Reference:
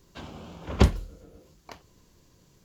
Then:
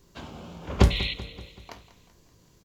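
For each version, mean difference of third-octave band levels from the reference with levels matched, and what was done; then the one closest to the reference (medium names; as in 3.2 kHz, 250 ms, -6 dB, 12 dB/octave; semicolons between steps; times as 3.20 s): 4.5 dB: feedback comb 57 Hz, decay 0.33 s, harmonics all, mix 60%; painted sound noise, 0.90–1.14 s, 1.9–4.3 kHz -36 dBFS; on a send: feedback delay 191 ms, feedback 54%, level -15.5 dB; on the sum: trim +5 dB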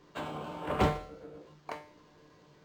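6.0 dB: overdrive pedal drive 27 dB, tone 1.3 kHz, clips at -3.5 dBFS; feedback comb 150 Hz, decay 0.44 s, harmonics all, mix 80%; decimation joined by straight lines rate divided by 4×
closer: first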